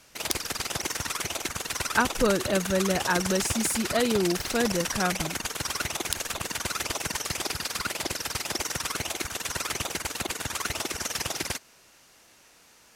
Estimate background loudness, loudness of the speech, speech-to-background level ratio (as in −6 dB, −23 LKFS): −30.0 LKFS, −28.0 LKFS, 2.0 dB